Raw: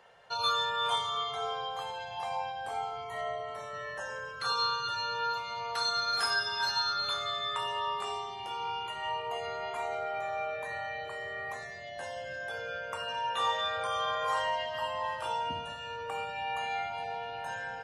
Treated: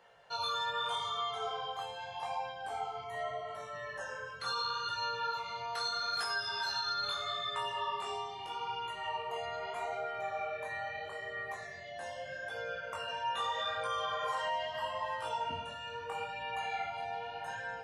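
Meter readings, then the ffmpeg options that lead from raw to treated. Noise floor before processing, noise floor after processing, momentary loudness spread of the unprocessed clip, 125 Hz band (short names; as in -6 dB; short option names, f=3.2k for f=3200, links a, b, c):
-42 dBFS, -45 dBFS, 10 LU, -3.0 dB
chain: -af "flanger=delay=17:depth=7.5:speed=0.79,alimiter=level_in=2dB:limit=-24dB:level=0:latency=1:release=73,volume=-2dB"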